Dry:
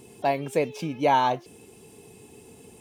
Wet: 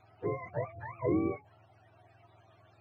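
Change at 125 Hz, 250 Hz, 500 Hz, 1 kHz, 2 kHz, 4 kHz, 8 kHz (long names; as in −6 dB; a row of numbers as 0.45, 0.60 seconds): −3.0 dB, −3.0 dB, −9.0 dB, −19.5 dB, −13.5 dB, below −30 dB, below −35 dB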